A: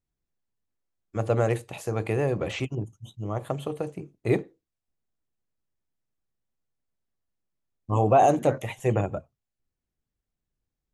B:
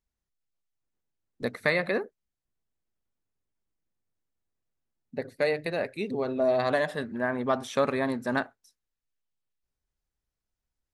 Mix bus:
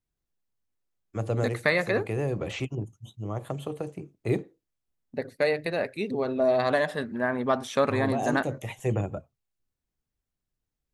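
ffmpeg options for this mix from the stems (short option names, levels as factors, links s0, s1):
-filter_complex "[0:a]acrossover=split=400|3000[s0][s1][s2];[s1]acompressor=threshold=0.0224:ratio=2.5[s3];[s0][s3][s2]amix=inputs=3:normalize=0,volume=0.841[s4];[1:a]agate=range=0.355:threshold=0.00447:ratio=16:detection=peak,volume=1.19,asplit=2[s5][s6];[s6]apad=whole_len=482288[s7];[s4][s7]sidechaincompress=threshold=0.0501:ratio=8:attack=28:release=479[s8];[s8][s5]amix=inputs=2:normalize=0"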